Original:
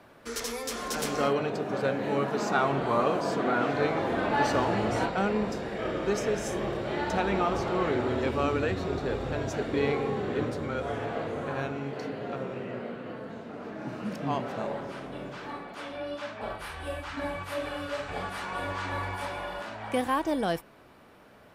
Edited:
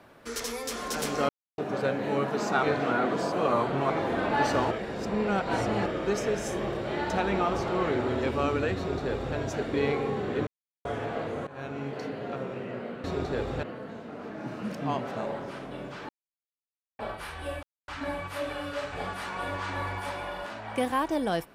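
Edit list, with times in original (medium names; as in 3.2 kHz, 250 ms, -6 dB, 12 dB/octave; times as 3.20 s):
1.29–1.58 s: mute
2.63–3.90 s: reverse
4.71–5.86 s: reverse
8.77–9.36 s: copy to 13.04 s
10.47–10.85 s: mute
11.47–11.81 s: fade in, from -19.5 dB
15.50–16.40 s: mute
17.04 s: insert silence 0.25 s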